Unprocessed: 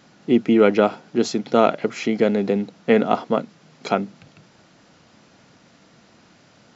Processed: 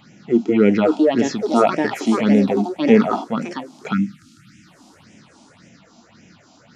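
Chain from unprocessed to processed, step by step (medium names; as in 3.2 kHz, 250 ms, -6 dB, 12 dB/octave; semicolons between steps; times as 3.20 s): ever faster or slower copies 627 ms, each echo +5 st, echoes 2, each echo -6 dB; harmonic-percussive split percussive -11 dB; in parallel at -3 dB: peak limiter -14 dBFS, peak gain reduction 9 dB; on the sum: phase shifter stages 6, 1.8 Hz, lowest notch 120–1200 Hz; spectral selection erased 3.93–4.67 s, 330–1200 Hz; trim +4.5 dB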